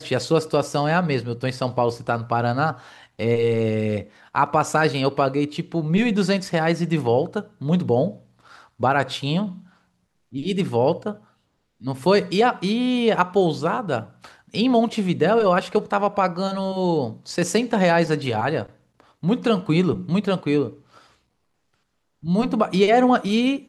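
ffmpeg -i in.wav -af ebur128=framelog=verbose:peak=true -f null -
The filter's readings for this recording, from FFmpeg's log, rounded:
Integrated loudness:
  I:         -21.6 LUFS
  Threshold: -32.2 LUFS
Loudness range:
  LRA:         3.7 LU
  Threshold: -42.5 LUFS
  LRA low:   -24.8 LUFS
  LRA high:  -21.1 LUFS
True peak:
  Peak:       -4.3 dBFS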